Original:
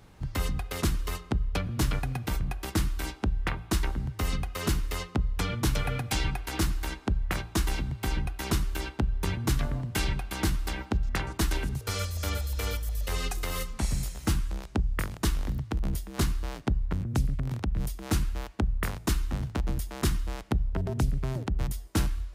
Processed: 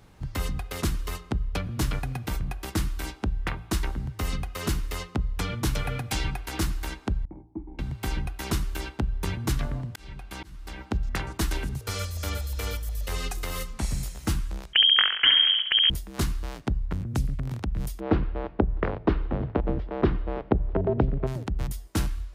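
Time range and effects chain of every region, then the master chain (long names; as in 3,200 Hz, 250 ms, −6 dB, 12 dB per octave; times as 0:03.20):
0:07.25–0:07.79: variable-slope delta modulation 64 kbit/s + formant resonators in series u
0:09.52–0:10.91: high-shelf EQ 8,800 Hz −4.5 dB + volume swells 579 ms
0:14.73–0:15.90: voice inversion scrambler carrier 3,200 Hz + parametric band 1,700 Hz +14 dB 1.2 octaves + flutter between parallel walls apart 11.7 metres, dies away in 0.64 s
0:18.00–0:21.27: Bessel low-pass filter 2,200 Hz, order 6 + parametric band 480 Hz +13 dB 1.8 octaves + repeating echo 328 ms, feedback 44%, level −23 dB
whole clip: no processing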